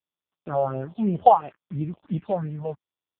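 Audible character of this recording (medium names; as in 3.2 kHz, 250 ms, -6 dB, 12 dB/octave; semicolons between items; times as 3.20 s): a quantiser's noise floor 8-bit, dither none; phasing stages 4, 2.9 Hz, lowest notch 270–1100 Hz; AMR-NB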